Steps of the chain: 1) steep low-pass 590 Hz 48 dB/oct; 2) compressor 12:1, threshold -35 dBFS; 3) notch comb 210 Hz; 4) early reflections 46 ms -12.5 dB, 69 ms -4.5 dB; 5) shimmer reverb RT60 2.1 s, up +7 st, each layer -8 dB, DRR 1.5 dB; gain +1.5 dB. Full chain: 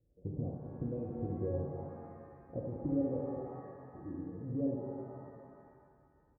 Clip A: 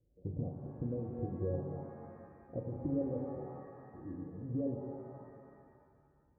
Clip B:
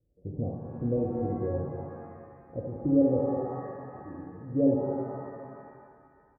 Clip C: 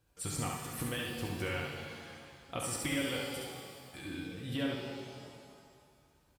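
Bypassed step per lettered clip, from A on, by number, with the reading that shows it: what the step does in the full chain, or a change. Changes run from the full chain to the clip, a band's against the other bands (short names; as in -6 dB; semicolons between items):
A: 4, 125 Hz band +1.5 dB; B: 2, mean gain reduction 5.0 dB; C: 1, 1 kHz band +8.5 dB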